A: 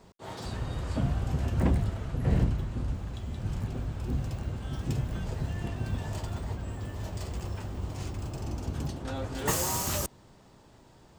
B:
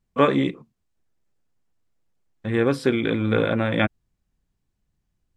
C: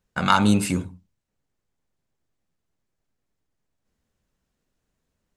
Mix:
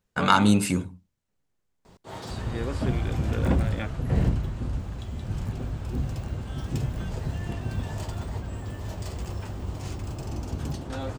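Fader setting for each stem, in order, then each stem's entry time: +2.0 dB, -13.5 dB, -1.0 dB; 1.85 s, 0.00 s, 0.00 s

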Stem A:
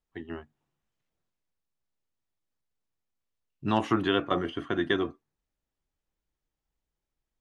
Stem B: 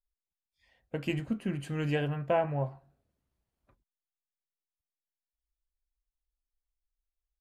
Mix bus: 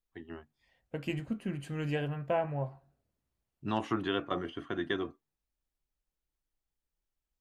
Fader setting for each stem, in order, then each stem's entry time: -6.5 dB, -3.0 dB; 0.00 s, 0.00 s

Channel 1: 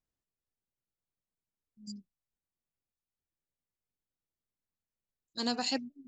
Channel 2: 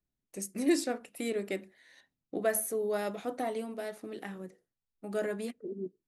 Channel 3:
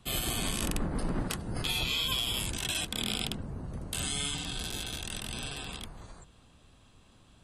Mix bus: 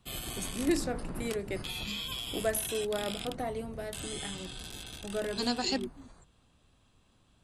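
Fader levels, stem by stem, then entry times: +1.0 dB, -1.5 dB, -7.0 dB; 0.00 s, 0.00 s, 0.00 s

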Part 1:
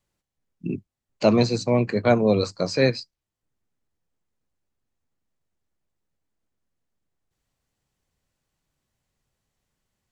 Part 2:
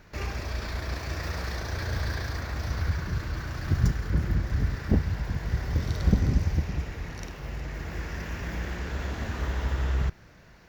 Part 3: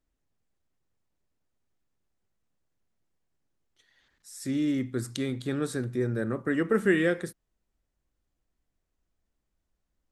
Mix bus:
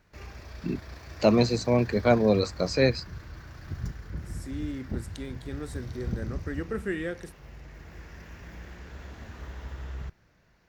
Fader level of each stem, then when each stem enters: -2.5 dB, -11.0 dB, -8.0 dB; 0.00 s, 0.00 s, 0.00 s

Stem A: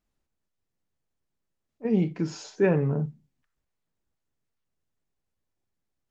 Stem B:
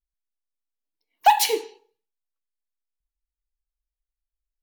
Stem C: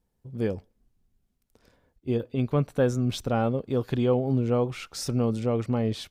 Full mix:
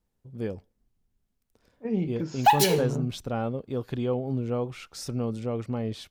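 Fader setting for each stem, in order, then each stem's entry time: -4.0 dB, -3.0 dB, -4.5 dB; 0.00 s, 1.20 s, 0.00 s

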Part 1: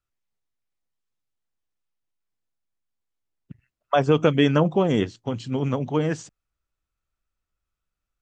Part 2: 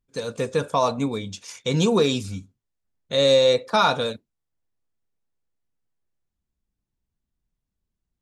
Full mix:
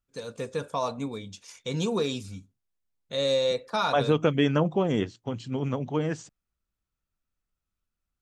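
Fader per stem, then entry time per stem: -4.5 dB, -8.0 dB; 0.00 s, 0.00 s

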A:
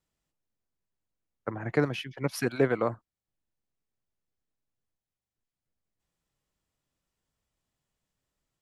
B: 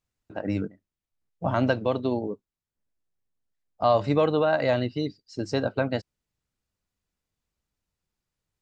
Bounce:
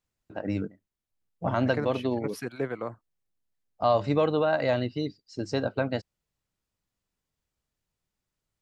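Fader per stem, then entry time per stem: -6.5 dB, -2.0 dB; 0.00 s, 0.00 s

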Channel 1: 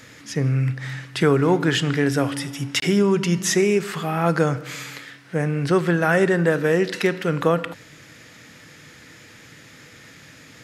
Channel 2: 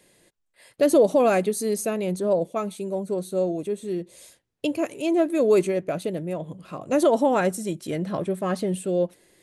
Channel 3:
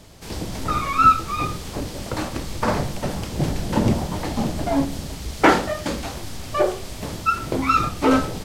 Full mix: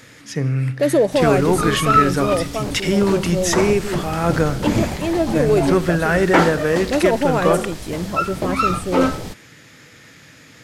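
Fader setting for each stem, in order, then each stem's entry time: +0.5 dB, +1.5 dB, -0.5 dB; 0.00 s, 0.00 s, 0.90 s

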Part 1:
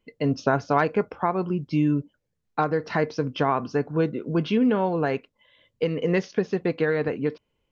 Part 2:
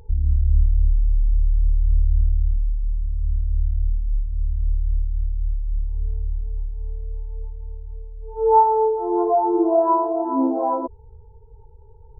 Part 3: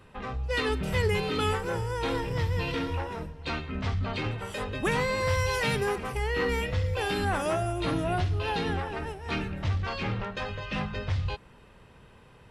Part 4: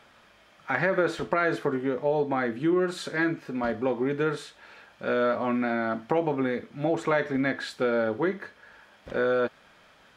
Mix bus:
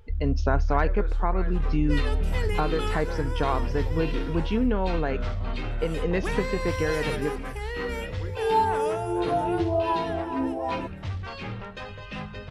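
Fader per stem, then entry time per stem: -4.0 dB, -8.0 dB, -4.0 dB, -16.0 dB; 0.00 s, 0.00 s, 1.40 s, 0.00 s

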